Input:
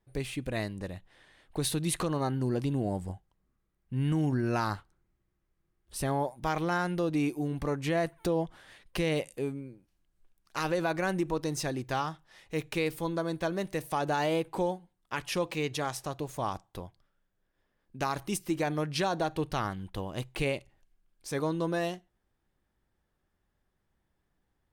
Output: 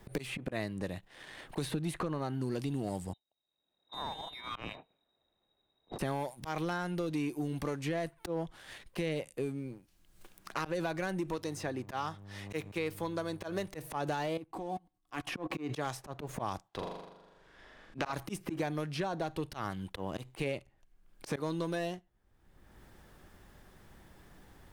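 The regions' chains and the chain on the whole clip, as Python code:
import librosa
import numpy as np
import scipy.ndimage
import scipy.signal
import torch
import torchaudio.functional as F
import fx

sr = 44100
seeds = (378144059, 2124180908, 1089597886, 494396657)

y = fx.chain(x, sr, fx.ellip_bandstop(low_hz=170.0, high_hz=450.0, order=3, stop_db=40),
    fx.freq_invert(carrier_hz=3800),
    fx.curve_eq(hz=(690.0, 3000.0, 16000.0), db=(0, -30, -12)), at=(3.13, 5.99))
y = fx.low_shelf(y, sr, hz=230.0, db=-9.0, at=(11.35, 13.66), fade=0.02)
y = fx.dmg_buzz(y, sr, base_hz=100.0, harmonics=12, level_db=-53.0, tilt_db=-8, odd_only=False, at=(11.35, 13.66), fade=0.02)
y = fx.chain(y, sr, fx.level_steps(step_db=23),
    fx.small_body(hz=(300.0, 730.0, 1100.0), ring_ms=60, db=13), at=(14.37, 15.7))
y = fx.chain(y, sr, fx.lowpass(hz=5300.0, slope=12),
    fx.low_shelf(hz=380.0, db=-9.5),
    fx.room_flutter(wall_m=7.0, rt60_s=0.83), at=(16.68, 18.13))
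y = fx.auto_swell(y, sr, attack_ms=156.0)
y = fx.leveller(y, sr, passes=1)
y = fx.band_squash(y, sr, depth_pct=100)
y = y * librosa.db_to_amplitude(-6.5)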